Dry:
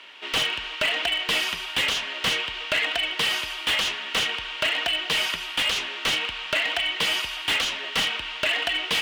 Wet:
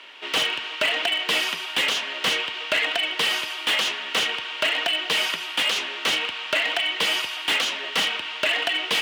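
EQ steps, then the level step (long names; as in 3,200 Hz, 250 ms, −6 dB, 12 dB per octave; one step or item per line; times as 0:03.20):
Bessel high-pass filter 330 Hz, order 2
low-shelf EQ 490 Hz +6.5 dB
+1.0 dB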